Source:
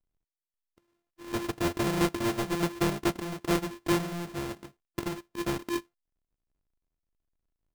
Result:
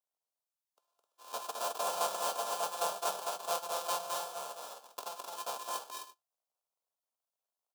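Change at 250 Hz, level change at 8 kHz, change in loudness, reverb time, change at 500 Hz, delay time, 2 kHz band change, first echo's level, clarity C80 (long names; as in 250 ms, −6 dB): −30.0 dB, +2.0 dB, −5.5 dB, no reverb audible, −6.5 dB, 212 ms, −9.5 dB, −3.5 dB, no reverb audible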